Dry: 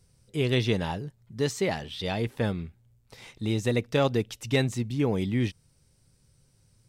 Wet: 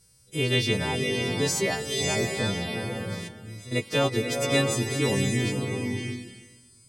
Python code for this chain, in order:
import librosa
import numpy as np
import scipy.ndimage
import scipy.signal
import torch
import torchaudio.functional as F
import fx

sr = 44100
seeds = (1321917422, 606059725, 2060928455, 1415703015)

y = fx.freq_snap(x, sr, grid_st=2)
y = fx.tone_stack(y, sr, knobs='10-0-1', at=(3.27, 3.71), fade=0.02)
y = fx.rev_bloom(y, sr, seeds[0], attack_ms=630, drr_db=2.0)